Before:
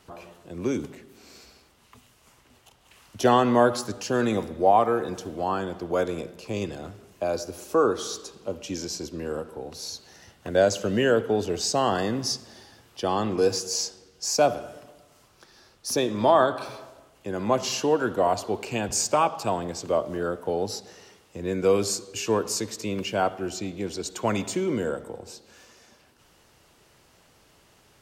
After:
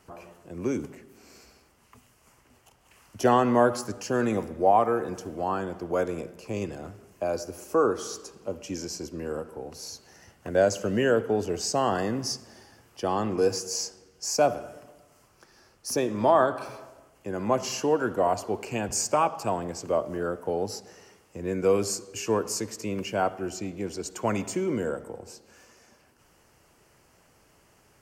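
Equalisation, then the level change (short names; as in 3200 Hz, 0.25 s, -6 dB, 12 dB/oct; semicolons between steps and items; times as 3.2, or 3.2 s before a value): bell 3700 Hz -11.5 dB 0.43 oct; -1.5 dB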